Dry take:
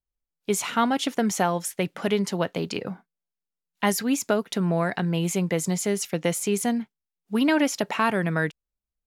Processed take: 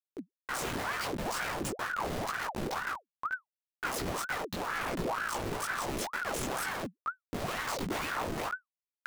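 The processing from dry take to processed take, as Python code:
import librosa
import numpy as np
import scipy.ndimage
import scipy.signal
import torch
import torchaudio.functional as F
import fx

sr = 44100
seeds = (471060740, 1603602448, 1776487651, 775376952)

y = fx.cycle_switch(x, sr, every=3, mode='muted')
y = scipy.signal.sosfilt(scipy.signal.butter(4, 100.0, 'highpass', fs=sr, output='sos'), y)
y = fx.hum_notches(y, sr, base_hz=60, count=8)
y = fx.env_lowpass(y, sr, base_hz=1600.0, full_db=-22.5)
y = fx.dmg_crackle(y, sr, seeds[0], per_s=17.0, level_db=-37.0)
y = fx.schmitt(y, sr, flips_db=-33.0)
y = fx.chorus_voices(y, sr, voices=4, hz=0.76, base_ms=19, depth_ms=5.0, mix_pct=45)
y = fx.ring_lfo(y, sr, carrier_hz=850.0, swing_pct=80, hz=2.1)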